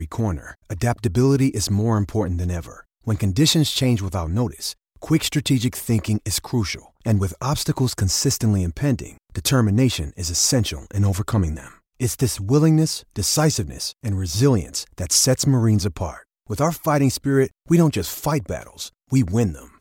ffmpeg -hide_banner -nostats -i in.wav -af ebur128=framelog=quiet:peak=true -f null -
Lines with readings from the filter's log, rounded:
Integrated loudness:
  I:         -20.9 LUFS
  Threshold: -31.2 LUFS
Loudness range:
  LRA:         2.5 LU
  Threshold: -41.0 LUFS
  LRA low:   -22.3 LUFS
  LRA high:  -19.8 LUFS
True peak:
  Peak:       -4.8 dBFS